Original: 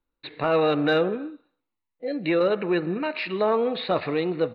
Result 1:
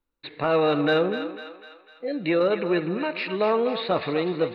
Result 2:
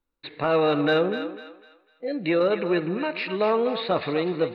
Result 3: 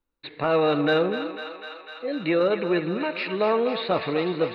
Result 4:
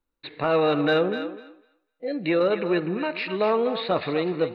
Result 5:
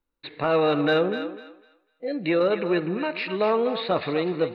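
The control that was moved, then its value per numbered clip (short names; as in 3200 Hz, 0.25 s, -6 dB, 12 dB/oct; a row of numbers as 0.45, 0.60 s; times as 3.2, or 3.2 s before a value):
thinning echo, feedback: 56, 36, 85, 16, 25%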